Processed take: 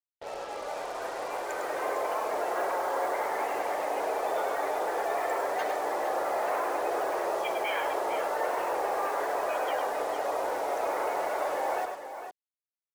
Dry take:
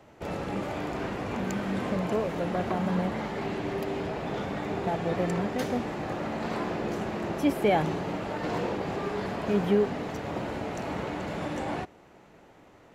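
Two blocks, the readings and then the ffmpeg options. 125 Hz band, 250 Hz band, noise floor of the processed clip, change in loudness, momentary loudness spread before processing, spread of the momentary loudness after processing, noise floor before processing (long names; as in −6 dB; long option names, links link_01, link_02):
below −25 dB, −14.5 dB, below −85 dBFS, 0.0 dB, 8 LU, 6 LU, −55 dBFS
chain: -filter_complex "[0:a]afftdn=noise_reduction=15:noise_floor=-39,afftfilt=real='re*lt(hypot(re,im),0.2)':imag='im*lt(hypot(re,im),0.2)':win_size=1024:overlap=0.75,highpass=frequency=500:width=0.5412,highpass=frequency=500:width=1.3066,highshelf=frequency=2700:gain=-7,dynaudnorm=framelen=480:gausssize=7:maxgain=8dB,alimiter=limit=-23dB:level=0:latency=1:release=19,acrusher=bits=6:mix=0:aa=0.5,asplit=2[link_01][link_02];[link_02]aecho=0:1:103|456:0.473|0.355[link_03];[link_01][link_03]amix=inputs=2:normalize=0"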